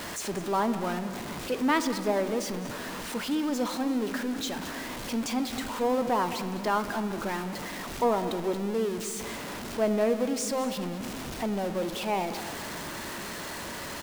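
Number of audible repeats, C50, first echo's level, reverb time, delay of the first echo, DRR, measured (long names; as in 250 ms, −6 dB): 1, 10.0 dB, −15.0 dB, 2.4 s, 206 ms, 9.0 dB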